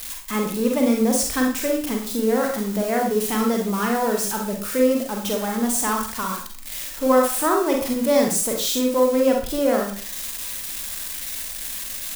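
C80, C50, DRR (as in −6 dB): 9.5 dB, 4.5 dB, 0.5 dB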